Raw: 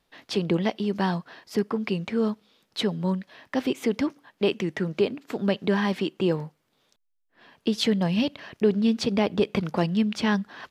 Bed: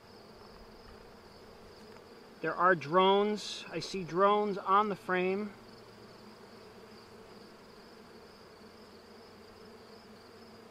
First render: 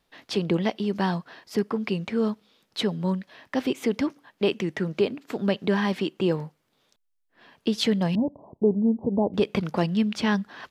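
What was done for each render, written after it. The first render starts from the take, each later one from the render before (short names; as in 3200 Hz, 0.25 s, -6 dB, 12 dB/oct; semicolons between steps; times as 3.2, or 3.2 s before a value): 8.15–9.34 steep low-pass 980 Hz 72 dB/oct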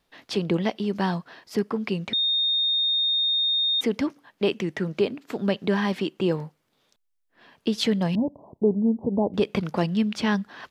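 2.13–3.81 bleep 3680 Hz -20 dBFS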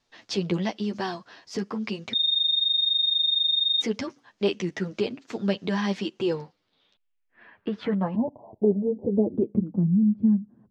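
low-pass sweep 6300 Hz -> 200 Hz, 6.22–9.94; flange 0.96 Hz, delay 7.9 ms, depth 3.4 ms, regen +3%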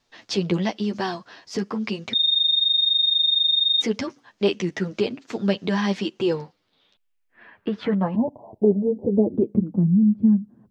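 gain +3.5 dB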